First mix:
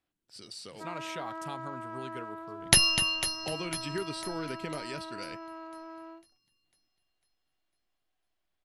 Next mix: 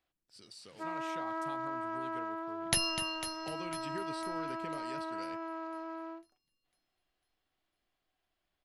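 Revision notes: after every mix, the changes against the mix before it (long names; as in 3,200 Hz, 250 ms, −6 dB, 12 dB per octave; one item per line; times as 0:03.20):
speech −8.0 dB
first sound +3.0 dB
second sound −9.5 dB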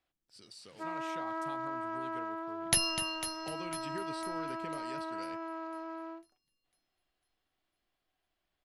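second sound: add high-shelf EQ 11,000 Hz +8.5 dB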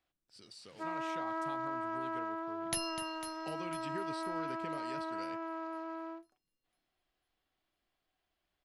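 speech: add high-shelf EQ 10,000 Hz −8 dB
second sound −9.0 dB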